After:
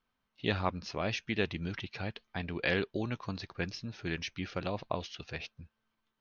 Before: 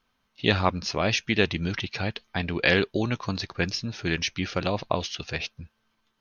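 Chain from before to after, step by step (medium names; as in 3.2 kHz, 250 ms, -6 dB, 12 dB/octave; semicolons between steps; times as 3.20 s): treble shelf 6.1 kHz -11.5 dB; trim -8.5 dB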